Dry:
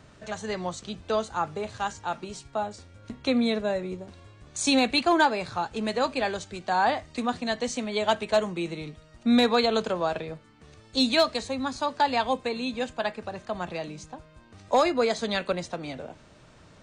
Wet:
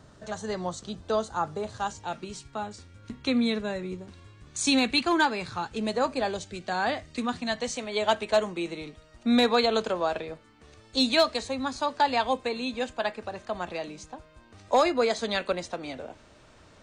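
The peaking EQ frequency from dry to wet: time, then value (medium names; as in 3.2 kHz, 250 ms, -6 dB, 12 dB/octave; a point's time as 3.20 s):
peaking EQ -8 dB 0.72 oct
1.81 s 2.4 kHz
2.31 s 640 Hz
5.71 s 640 Hz
6.05 s 4 kHz
6.54 s 900 Hz
7.09 s 900 Hz
8.03 s 150 Hz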